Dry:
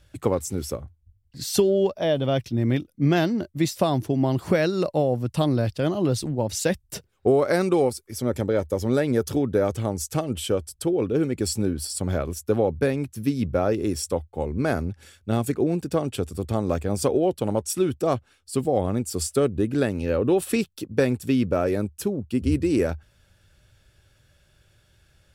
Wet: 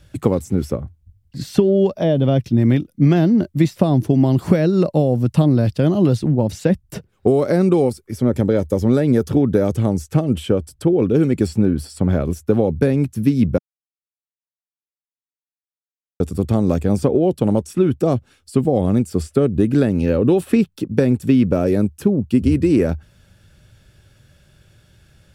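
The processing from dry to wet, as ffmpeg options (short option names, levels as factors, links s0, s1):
-filter_complex "[0:a]asplit=3[s0][s1][s2];[s0]atrim=end=13.58,asetpts=PTS-STARTPTS,afade=t=out:st=13.576:d=0.004:c=hsin[s3];[s1]atrim=start=13.58:end=16.2,asetpts=PTS-STARTPTS,volume=0[s4];[s2]atrim=start=16.2,asetpts=PTS-STARTPTS,afade=t=in:d=0.004:c=hsin[s5];[s3][s4][s5]concat=n=3:v=0:a=1,acrossover=split=650|2800[s6][s7][s8];[s6]acompressor=threshold=0.0891:ratio=4[s9];[s7]acompressor=threshold=0.0158:ratio=4[s10];[s8]acompressor=threshold=0.00447:ratio=4[s11];[s9][s10][s11]amix=inputs=3:normalize=0,equalizer=f=180:w=0.84:g=7.5,volume=1.88"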